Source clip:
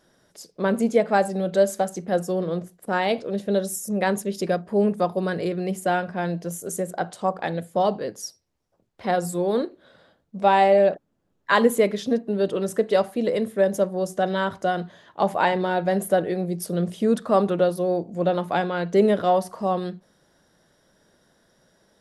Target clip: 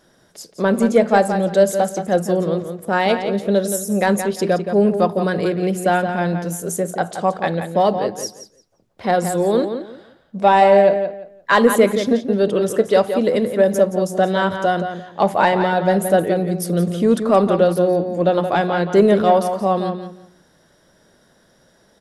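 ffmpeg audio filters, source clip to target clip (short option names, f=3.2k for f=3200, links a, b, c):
-filter_complex "[0:a]acontrast=43,asplit=2[a][b];[b]adelay=173,lowpass=f=4.6k:p=1,volume=-8dB,asplit=2[c][d];[d]adelay=173,lowpass=f=4.6k:p=1,volume=0.23,asplit=2[e][f];[f]adelay=173,lowpass=f=4.6k:p=1,volume=0.23[g];[a][c][e][g]amix=inputs=4:normalize=0"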